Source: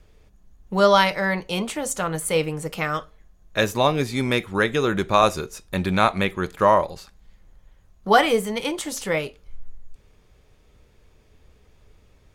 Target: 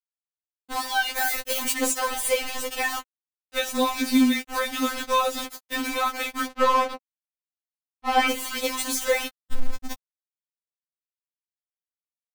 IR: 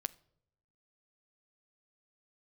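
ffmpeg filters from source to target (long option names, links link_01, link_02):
-filter_complex "[0:a]equalizer=frequency=620:width=2.9:gain=-8,acrusher=bits=4:mix=0:aa=0.000001,acompressor=threshold=-26dB:ratio=2.5,asettb=1/sr,asplit=3[link_01][link_02][link_03];[link_01]atrim=end=1.154[link_04];[link_02]atrim=start=1.15:end=1.72,asetpts=PTS-STARTPTS,afade=type=in:duration=0.004:curve=qsin,afade=type=out:start_time=0.566:duration=0.004:curve=qsin,highshelf=frequency=9600:gain=11[link_05];[link_03]atrim=start=1.716[link_06];[link_04][link_05]acrossfade=duration=0.004:curve1=hsin:curve2=qsin[link_07];[link_07][link_06]acrossfade=duration=0.004:curve1=qsin:curve2=hsin,asettb=1/sr,asplit=3[link_08][link_09][link_10];[link_08]atrim=end=6.494[link_11];[link_09]atrim=start=6.49:end=8.29,asetpts=PTS-STARTPTS,afade=type=in:duration=0.004:curve=qsin,afade=type=out:start_time=1.796:duration=0.004:curve=qsin,asplit=2[link_12][link_13];[link_13]highpass=frequency=720:poles=1,volume=27dB,asoftclip=type=tanh:threshold=-15.5dB[link_14];[link_12][link_14]amix=inputs=2:normalize=0,lowpass=frequency=1300:poles=1,volume=-6dB[link_15];[link_10]atrim=start=8.286[link_16];[link_11][link_15]acrossfade=duration=0.004:curve1=hsin:curve2=qsin[link_17];[link_17][link_16]acrossfade=duration=0.004:curve1=qsin:curve2=hsin,alimiter=level_in=15dB:limit=-1dB:release=50:level=0:latency=1,afftfilt=real='re*3.46*eq(mod(b,12),0)':imag='im*3.46*eq(mod(b,12),0)':win_size=2048:overlap=0.75,volume=-8.5dB"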